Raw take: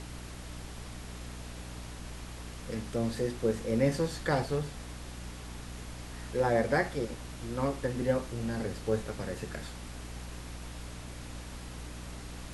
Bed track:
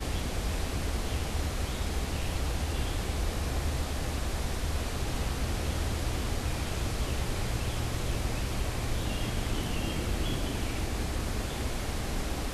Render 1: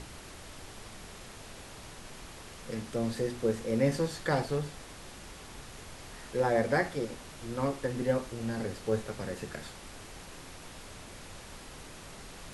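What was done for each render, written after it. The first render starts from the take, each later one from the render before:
hum removal 60 Hz, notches 5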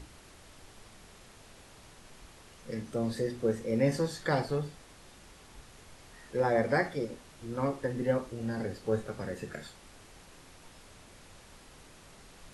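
noise reduction from a noise print 7 dB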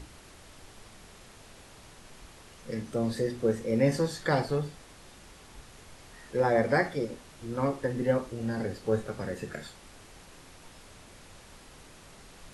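level +2.5 dB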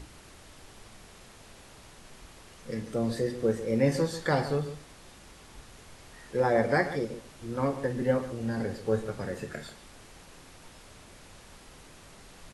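slap from a distant wall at 24 metres, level −13 dB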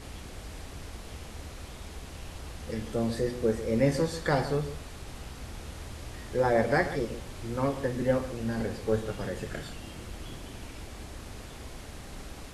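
mix in bed track −11 dB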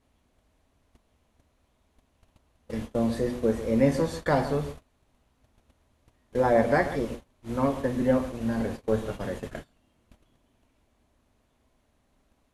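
noise gate −35 dBFS, range −27 dB
thirty-one-band graphic EQ 250 Hz +7 dB, 630 Hz +6 dB, 1,000 Hz +5 dB, 5,000 Hz −5 dB, 8,000 Hz −3 dB

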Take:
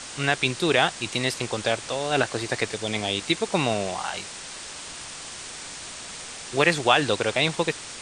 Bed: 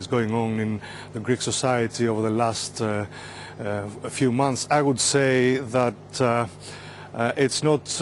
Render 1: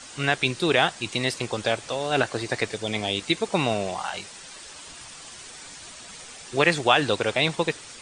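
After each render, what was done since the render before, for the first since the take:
broadband denoise 8 dB, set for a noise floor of −39 dBFS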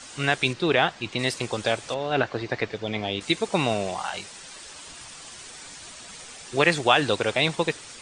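0:00.53–0:01.19: Bessel low-pass filter 3,600 Hz
0:01.94–0:03.21: high-frequency loss of the air 180 metres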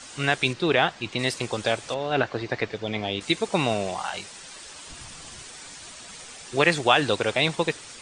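0:04.90–0:05.43: low-shelf EQ 200 Hz +10.5 dB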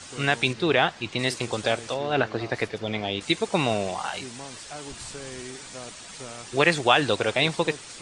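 mix in bed −20 dB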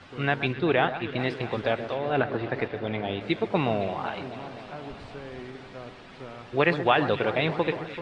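high-frequency loss of the air 370 metres
delay that swaps between a low-pass and a high-pass 128 ms, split 1,700 Hz, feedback 84%, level −11.5 dB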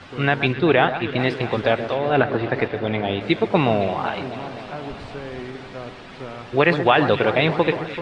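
level +7 dB
brickwall limiter −3 dBFS, peak gain reduction 2.5 dB

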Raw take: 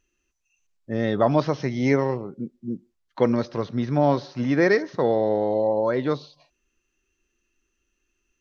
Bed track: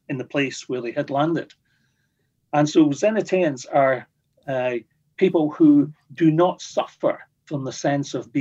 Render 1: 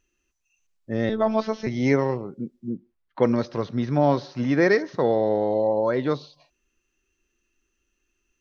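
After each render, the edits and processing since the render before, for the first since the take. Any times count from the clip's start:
0:01.09–0:01.67: phases set to zero 219 Hz
0:02.70–0:03.23: low-pass filter 2,700 Hz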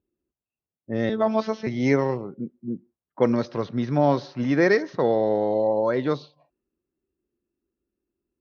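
low-pass that shuts in the quiet parts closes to 550 Hz, open at −19.5 dBFS
high-pass filter 91 Hz 12 dB per octave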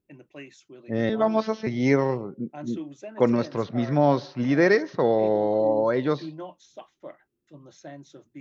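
mix in bed track −20.5 dB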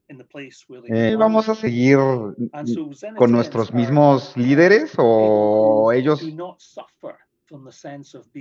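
level +7 dB
brickwall limiter −1 dBFS, peak gain reduction 1 dB

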